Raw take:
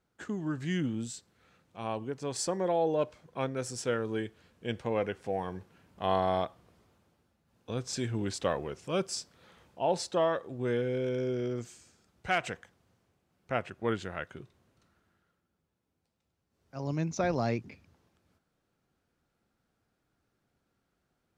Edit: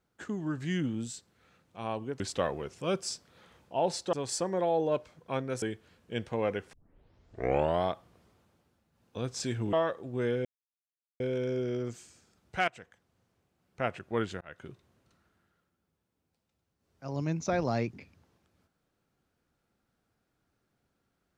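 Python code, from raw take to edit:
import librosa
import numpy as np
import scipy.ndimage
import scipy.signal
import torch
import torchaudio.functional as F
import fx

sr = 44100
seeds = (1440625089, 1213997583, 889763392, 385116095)

y = fx.edit(x, sr, fx.cut(start_s=3.69, length_s=0.46),
    fx.tape_start(start_s=5.26, length_s=1.11),
    fx.move(start_s=8.26, length_s=1.93, to_s=2.2),
    fx.insert_silence(at_s=10.91, length_s=0.75),
    fx.fade_in_from(start_s=12.39, length_s=1.22, curve='qsin', floor_db=-18.0),
    fx.fade_in_span(start_s=14.12, length_s=0.25), tone=tone)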